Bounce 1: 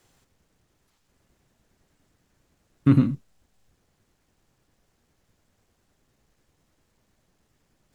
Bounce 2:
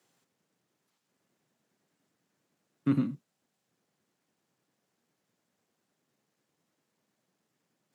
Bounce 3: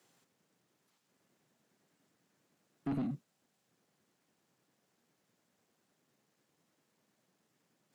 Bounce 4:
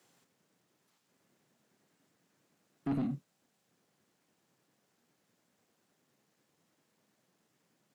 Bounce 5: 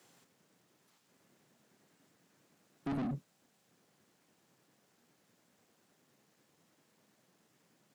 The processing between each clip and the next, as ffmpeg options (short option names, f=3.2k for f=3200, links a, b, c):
-af "highpass=f=150:w=0.5412,highpass=f=150:w=1.3066,volume=-8dB"
-af "alimiter=limit=-23dB:level=0:latency=1:release=125,asoftclip=type=tanh:threshold=-33dB,volume=2dB"
-filter_complex "[0:a]asplit=2[a][b];[b]adelay=29,volume=-13dB[c];[a][c]amix=inputs=2:normalize=0,volume=1.5dB"
-af "asoftclip=type=tanh:threshold=-37.5dB,volume=4dB"